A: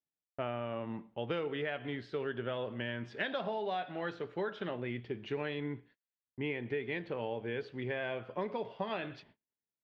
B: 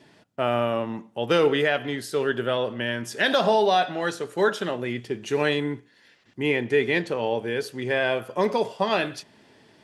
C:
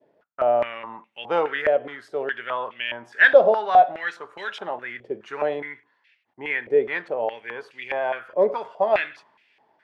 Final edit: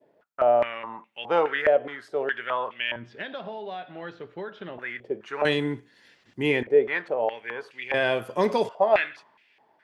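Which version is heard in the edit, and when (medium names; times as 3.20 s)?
C
2.96–4.78 s: from A
5.45–6.63 s: from B
7.94–8.69 s: from B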